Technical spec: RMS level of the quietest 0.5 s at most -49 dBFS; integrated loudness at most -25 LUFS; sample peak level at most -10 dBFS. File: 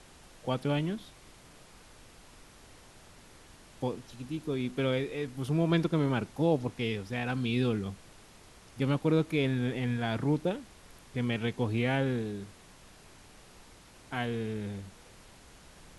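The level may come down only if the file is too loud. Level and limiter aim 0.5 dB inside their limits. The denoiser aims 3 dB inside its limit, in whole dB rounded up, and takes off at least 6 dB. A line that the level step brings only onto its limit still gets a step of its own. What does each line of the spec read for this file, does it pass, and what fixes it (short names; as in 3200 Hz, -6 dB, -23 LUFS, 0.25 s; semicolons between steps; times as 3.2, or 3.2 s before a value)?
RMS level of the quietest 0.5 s -55 dBFS: OK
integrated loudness -31.5 LUFS: OK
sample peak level -14.0 dBFS: OK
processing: none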